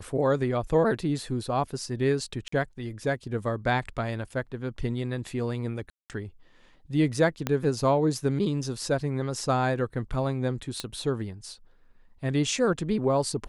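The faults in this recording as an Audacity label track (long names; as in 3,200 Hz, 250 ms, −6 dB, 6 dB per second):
2.480000	2.520000	drop-out 44 ms
5.900000	6.100000	drop-out 198 ms
7.470000	7.470000	click −12 dBFS
10.800000	10.800000	click −15 dBFS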